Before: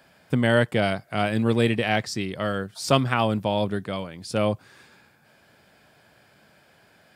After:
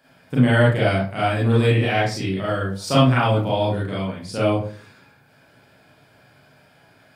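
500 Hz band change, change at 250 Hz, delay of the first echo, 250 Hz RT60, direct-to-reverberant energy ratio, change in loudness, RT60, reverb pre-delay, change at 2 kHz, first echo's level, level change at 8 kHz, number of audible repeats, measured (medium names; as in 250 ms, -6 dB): +3.5 dB, +3.5 dB, no echo, 0.55 s, -8.0 dB, +4.5 dB, 0.45 s, 31 ms, +3.0 dB, no echo, 0.0 dB, no echo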